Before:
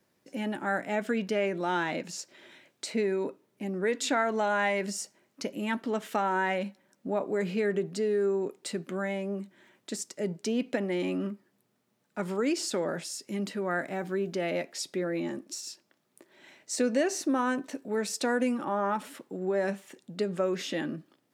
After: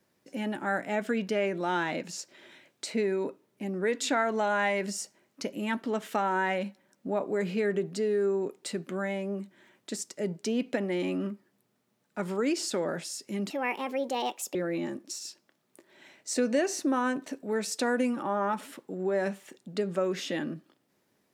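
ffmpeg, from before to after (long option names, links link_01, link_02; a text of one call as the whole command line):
ffmpeg -i in.wav -filter_complex "[0:a]asplit=3[link_01][link_02][link_03];[link_01]atrim=end=13.504[link_04];[link_02]atrim=start=13.5:end=14.97,asetpts=PTS-STARTPTS,asetrate=61740,aresample=44100[link_05];[link_03]atrim=start=14.966[link_06];[link_04][link_05]acrossfade=duration=0.004:curve1=hsin:curve2=hsin[link_07];[link_07][link_06]acrossfade=duration=0.004:curve1=hsin:curve2=hsin" out.wav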